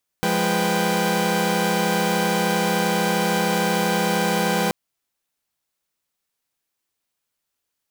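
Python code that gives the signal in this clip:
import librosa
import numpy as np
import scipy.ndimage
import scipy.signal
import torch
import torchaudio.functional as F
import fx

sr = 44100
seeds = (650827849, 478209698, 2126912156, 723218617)

y = fx.chord(sr, length_s=4.48, notes=(53, 56, 71, 79), wave='saw', level_db=-22.0)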